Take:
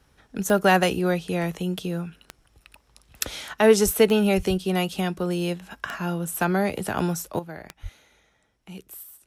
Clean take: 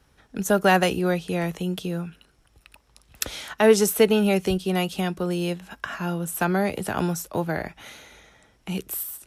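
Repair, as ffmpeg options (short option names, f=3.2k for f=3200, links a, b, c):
-filter_complex "[0:a]adeclick=t=4,asplit=3[a][b][c];[a]afade=t=out:st=3.84:d=0.02[d];[b]highpass=f=140:w=0.5412,highpass=f=140:w=1.3066,afade=t=in:st=3.84:d=0.02,afade=t=out:st=3.96:d=0.02[e];[c]afade=t=in:st=3.96:d=0.02[f];[d][e][f]amix=inputs=3:normalize=0,asplit=3[g][h][i];[g]afade=t=out:st=4.36:d=0.02[j];[h]highpass=f=140:w=0.5412,highpass=f=140:w=1.3066,afade=t=in:st=4.36:d=0.02,afade=t=out:st=4.48:d=0.02[k];[i]afade=t=in:st=4.48:d=0.02[l];[j][k][l]amix=inputs=3:normalize=0,asplit=3[m][n][o];[m]afade=t=out:st=7.82:d=0.02[p];[n]highpass=f=140:w=0.5412,highpass=f=140:w=1.3066,afade=t=in:st=7.82:d=0.02,afade=t=out:st=7.94:d=0.02[q];[o]afade=t=in:st=7.94:d=0.02[r];[p][q][r]amix=inputs=3:normalize=0,asetnsamples=n=441:p=0,asendcmd='7.39 volume volume 11dB',volume=0dB"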